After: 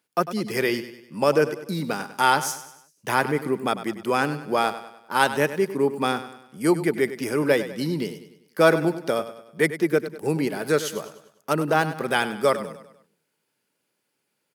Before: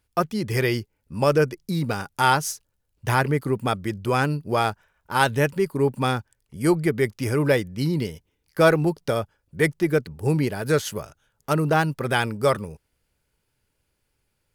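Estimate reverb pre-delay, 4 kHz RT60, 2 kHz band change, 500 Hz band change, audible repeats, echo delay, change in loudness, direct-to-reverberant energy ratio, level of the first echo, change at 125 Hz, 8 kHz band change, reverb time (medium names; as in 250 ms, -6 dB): no reverb, no reverb, +0.5 dB, 0.0 dB, 4, 99 ms, -0.5 dB, no reverb, -13.0 dB, -8.0 dB, +0.5 dB, no reverb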